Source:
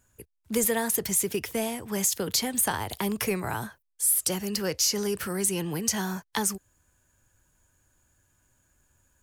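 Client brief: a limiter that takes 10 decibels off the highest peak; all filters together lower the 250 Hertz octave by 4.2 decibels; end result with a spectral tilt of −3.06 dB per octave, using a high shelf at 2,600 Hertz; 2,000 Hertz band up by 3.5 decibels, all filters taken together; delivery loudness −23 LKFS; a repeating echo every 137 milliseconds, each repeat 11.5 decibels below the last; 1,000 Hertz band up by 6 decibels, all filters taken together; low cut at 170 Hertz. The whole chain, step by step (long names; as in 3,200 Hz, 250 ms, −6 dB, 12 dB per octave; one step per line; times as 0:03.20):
high-pass filter 170 Hz
parametric band 250 Hz −4 dB
parametric band 1,000 Hz +7.5 dB
parametric band 2,000 Hz +4.5 dB
high-shelf EQ 2,600 Hz −6.5 dB
brickwall limiter −19.5 dBFS
repeating echo 137 ms, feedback 27%, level −11.5 dB
level +7.5 dB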